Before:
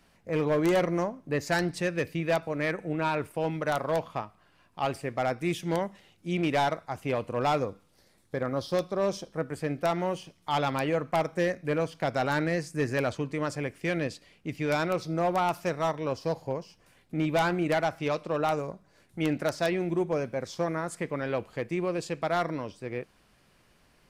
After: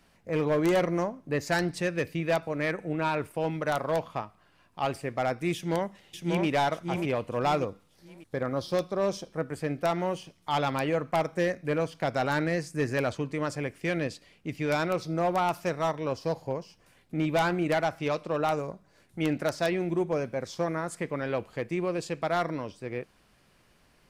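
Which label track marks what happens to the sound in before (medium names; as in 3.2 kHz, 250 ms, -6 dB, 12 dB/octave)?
5.540000	6.460000	echo throw 590 ms, feedback 35%, level -3.5 dB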